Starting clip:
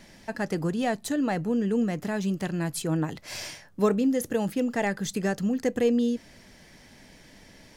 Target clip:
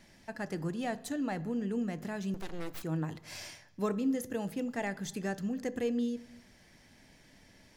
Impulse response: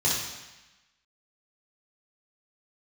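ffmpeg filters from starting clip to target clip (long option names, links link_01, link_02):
-filter_complex "[0:a]asettb=1/sr,asplit=3[link_01][link_02][link_03];[link_01]atrim=end=2.344[link_04];[link_02]atrim=start=2.34:end=2.83,asetpts=PTS-STARTPTS,afade=type=in:duration=0.004:curve=qsin,afade=type=out:start_time=0.486:duration=0.004:curve=qsin,aeval=exprs='abs(val(0))':channel_layout=same[link_05];[link_03]atrim=start=2.826[link_06];[link_04][link_05]acrossfade=duration=0.004:curve1=hsin:curve2=qsin[link_07];[link_07][link_06]acrossfade=duration=0.004:curve1=qsin:curve2=hsin,asplit=2[link_08][link_09];[link_09]highshelf=frequency=3000:gain=-11[link_10];[1:a]atrim=start_sample=2205,afade=type=out:start_time=0.39:duration=0.01,atrim=end_sample=17640[link_11];[link_10][link_11]afir=irnorm=-1:irlink=0,volume=-24dB[link_12];[link_08][link_12]amix=inputs=2:normalize=0,volume=-8dB"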